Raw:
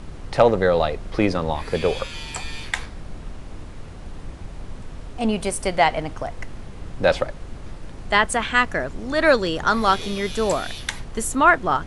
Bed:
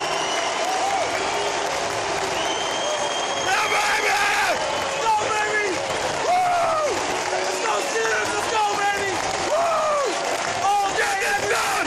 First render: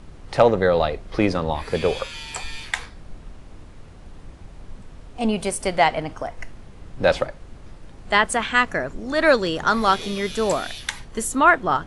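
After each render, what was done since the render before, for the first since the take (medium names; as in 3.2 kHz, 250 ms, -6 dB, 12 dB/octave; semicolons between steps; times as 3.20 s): noise print and reduce 6 dB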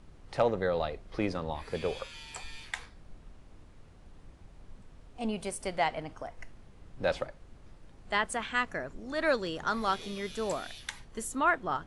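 trim -11.5 dB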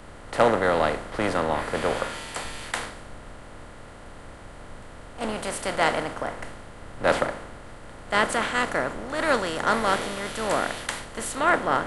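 spectral levelling over time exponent 0.4; three bands expanded up and down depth 100%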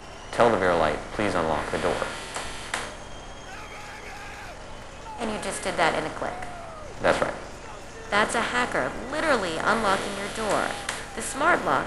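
add bed -20.5 dB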